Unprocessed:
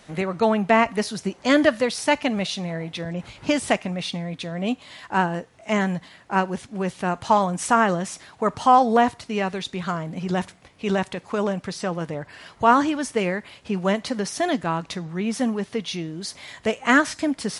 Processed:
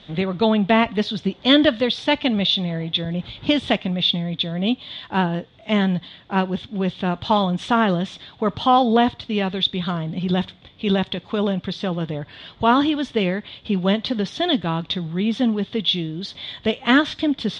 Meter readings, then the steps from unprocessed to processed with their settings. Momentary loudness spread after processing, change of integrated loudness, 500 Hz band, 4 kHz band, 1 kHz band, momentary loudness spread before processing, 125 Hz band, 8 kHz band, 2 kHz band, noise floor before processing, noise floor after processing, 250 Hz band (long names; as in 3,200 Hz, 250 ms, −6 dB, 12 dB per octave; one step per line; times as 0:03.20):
9 LU, +2.0 dB, +0.5 dB, +10.0 dB, −1.5 dB, 12 LU, +5.0 dB, below −10 dB, −1.0 dB, −52 dBFS, −49 dBFS, +4.0 dB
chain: low-pass with resonance 3,500 Hz, resonance Q 11
low-shelf EQ 470 Hz +11 dB
level −4.5 dB